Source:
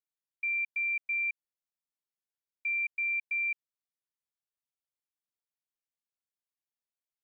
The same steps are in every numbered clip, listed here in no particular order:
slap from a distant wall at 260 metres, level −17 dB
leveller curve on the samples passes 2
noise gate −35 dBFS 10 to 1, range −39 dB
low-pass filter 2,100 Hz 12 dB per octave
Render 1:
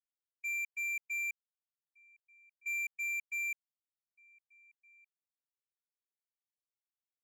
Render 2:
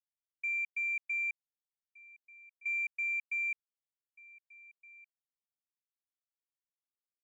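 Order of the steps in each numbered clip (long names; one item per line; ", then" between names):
low-pass filter, then noise gate, then leveller curve on the samples, then slap from a distant wall
noise gate, then slap from a distant wall, then leveller curve on the samples, then low-pass filter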